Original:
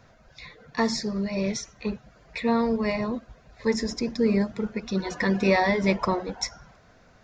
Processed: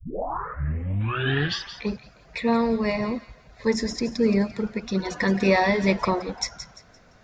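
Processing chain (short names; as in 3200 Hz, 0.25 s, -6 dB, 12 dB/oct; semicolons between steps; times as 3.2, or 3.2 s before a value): tape start at the beginning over 1.90 s; thin delay 0.172 s, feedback 32%, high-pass 1800 Hz, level -10.5 dB; spectral gain 1.01–1.82, 710–3900 Hz +10 dB; gain +1.5 dB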